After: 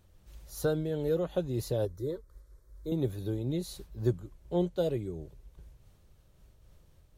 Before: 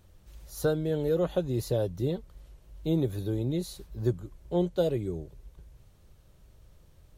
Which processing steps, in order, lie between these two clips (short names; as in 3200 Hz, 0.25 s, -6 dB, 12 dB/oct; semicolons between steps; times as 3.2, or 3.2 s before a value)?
1.85–2.92 fixed phaser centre 750 Hz, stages 6; noise-modulated level, depth 55%